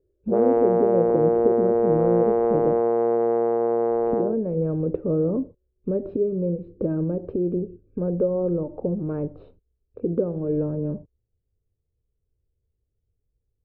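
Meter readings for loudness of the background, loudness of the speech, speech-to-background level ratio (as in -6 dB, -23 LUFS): -21.5 LUFS, -26.5 LUFS, -5.0 dB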